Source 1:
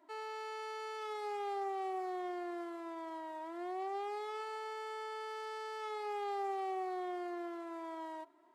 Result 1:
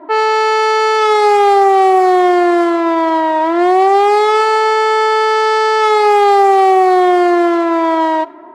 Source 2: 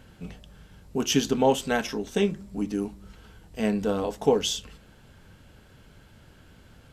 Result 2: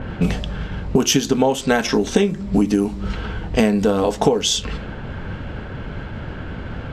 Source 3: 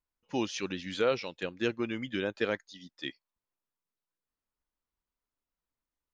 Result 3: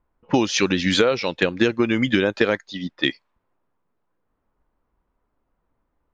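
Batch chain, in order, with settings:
downward compressor 16 to 1, threshold −36 dBFS
dynamic equaliser 2,900 Hz, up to −3 dB, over −60 dBFS, Q 4.1
low-pass that shuts in the quiet parts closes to 1,100 Hz, open at −36.5 dBFS
normalise the peak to −2 dBFS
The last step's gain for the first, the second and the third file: +31.0, +23.5, +22.0 decibels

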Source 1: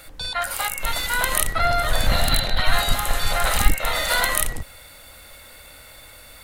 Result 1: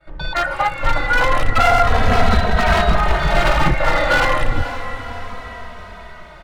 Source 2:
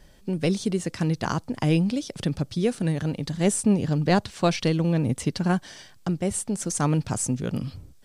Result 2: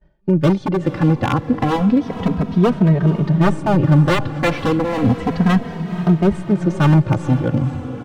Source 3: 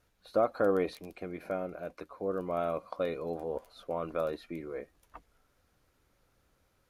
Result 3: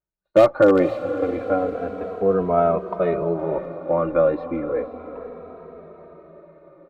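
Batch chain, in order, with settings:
low-pass filter 1,500 Hz 12 dB per octave
downward expander −41 dBFS
wave folding −19 dBFS
feedback delay with all-pass diffusion 490 ms, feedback 60%, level −12 dB
barber-pole flanger 2.8 ms −0.31 Hz
normalise the peak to −2 dBFS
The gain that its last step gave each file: +13.5, +13.5, +16.5 decibels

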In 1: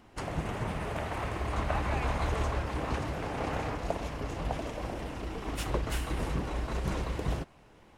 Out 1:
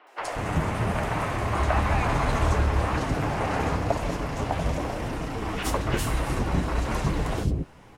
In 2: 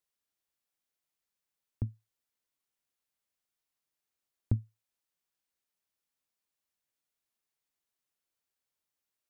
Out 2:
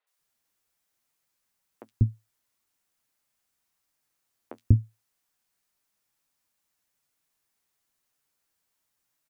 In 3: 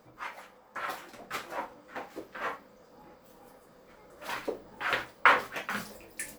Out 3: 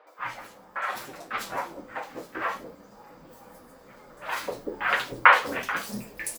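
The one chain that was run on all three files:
flanger 1 Hz, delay 6.2 ms, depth 6.2 ms, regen −34%
three-band delay without the direct sound mids, highs, lows 70/190 ms, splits 450/3,300 Hz
loudness normalisation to −27 LKFS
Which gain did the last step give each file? +12.0, +14.0, +10.0 decibels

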